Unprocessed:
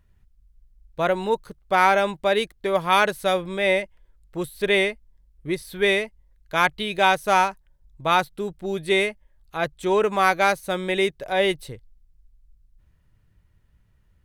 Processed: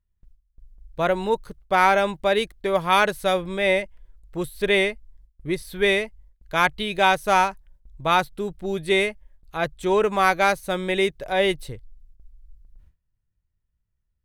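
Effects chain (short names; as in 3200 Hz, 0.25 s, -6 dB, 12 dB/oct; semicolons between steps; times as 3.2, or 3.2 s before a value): gate with hold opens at -48 dBFS; low shelf 70 Hz +9 dB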